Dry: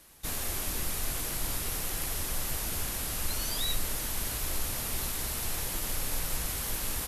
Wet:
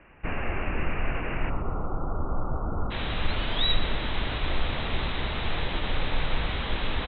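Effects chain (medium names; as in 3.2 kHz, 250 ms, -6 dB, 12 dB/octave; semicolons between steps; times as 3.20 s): Chebyshev low-pass 2.8 kHz, order 8, from 1.49 s 1.4 kHz, from 2.90 s 3.9 kHz; feedback delay 123 ms, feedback 45%, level -14.5 dB; trim +8.5 dB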